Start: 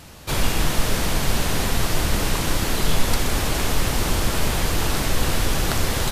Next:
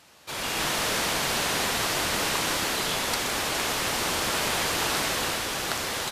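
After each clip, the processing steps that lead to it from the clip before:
high-pass filter 650 Hz 6 dB per octave
high-shelf EQ 11,000 Hz −7.5 dB
automatic gain control gain up to 10 dB
level −8 dB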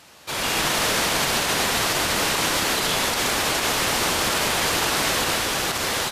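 brickwall limiter −18 dBFS, peak gain reduction 8 dB
level +6 dB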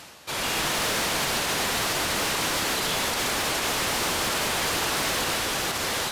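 reversed playback
upward compression, threshold −29 dBFS
reversed playback
soft clipping −18.5 dBFS, distortion −15 dB
level −1.5 dB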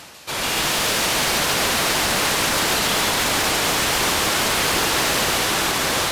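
echo with a time of its own for lows and highs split 2,300 Hz, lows 752 ms, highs 143 ms, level −3 dB
level +4 dB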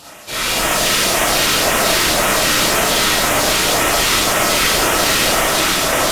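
auto-filter notch sine 1.9 Hz 610–4,700 Hz
comb and all-pass reverb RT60 0.42 s, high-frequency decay 0.55×, pre-delay 5 ms, DRR −5.5 dB

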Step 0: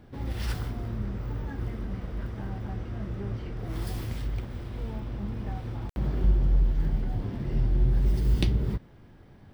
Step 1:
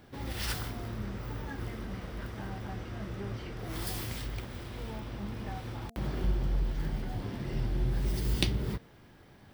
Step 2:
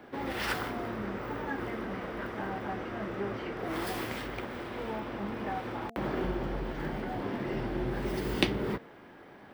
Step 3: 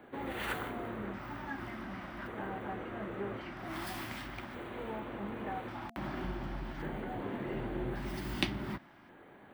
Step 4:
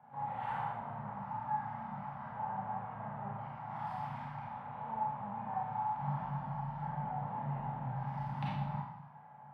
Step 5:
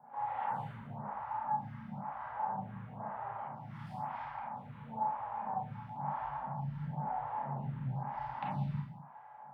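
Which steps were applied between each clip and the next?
spectral tilt +2 dB per octave; hum removal 229.2 Hz, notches 3; level +1 dB
three-way crossover with the lows and the highs turned down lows −18 dB, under 220 Hz, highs −14 dB, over 2,600 Hz; level +8.5 dB
auto-filter notch square 0.44 Hz 460–5,200 Hz; level −4 dB
pair of resonant band-passes 350 Hz, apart 2.6 octaves; convolution reverb RT60 0.80 s, pre-delay 28 ms, DRR −5.5 dB; level +5 dB
phaser with staggered stages 1 Hz; level +3.5 dB

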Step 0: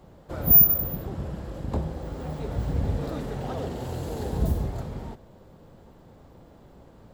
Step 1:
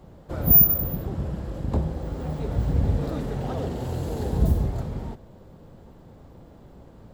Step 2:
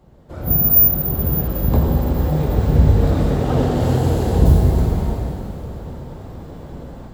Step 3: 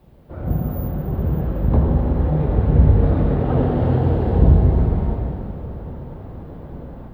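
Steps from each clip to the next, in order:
low-shelf EQ 370 Hz +4.5 dB
automatic gain control gain up to 13 dB; dense smooth reverb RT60 3.3 s, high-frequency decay 1×, DRR −1.5 dB; level −3.5 dB
background noise violet −44 dBFS; high-frequency loss of the air 490 metres

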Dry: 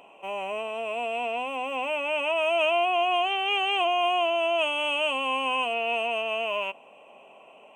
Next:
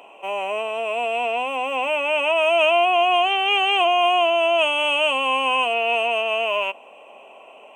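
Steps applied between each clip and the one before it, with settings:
high-pass filter 290 Hz 12 dB per octave
level +6.5 dB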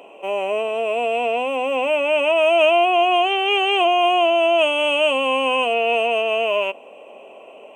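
low shelf with overshoot 660 Hz +6 dB, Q 1.5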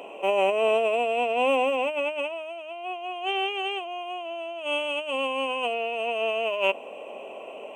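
compressor whose output falls as the input rises −23 dBFS, ratio −0.5
level −3 dB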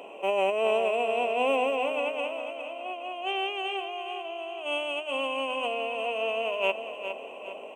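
repeating echo 410 ms, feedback 44%, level −9 dB
level −3 dB

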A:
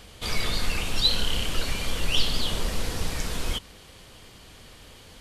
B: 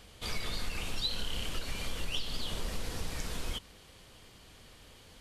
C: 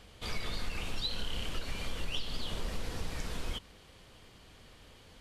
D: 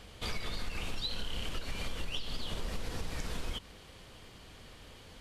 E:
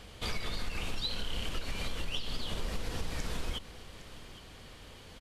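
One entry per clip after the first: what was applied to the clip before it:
downward compressor 5 to 1, threshold −22 dBFS, peak gain reduction 8 dB; level −7 dB
high-shelf EQ 5,500 Hz −7 dB
downward compressor 3 to 1, threshold −36 dBFS, peak gain reduction 6.5 dB; level +3.5 dB
single-tap delay 811 ms −16 dB; level +1.5 dB

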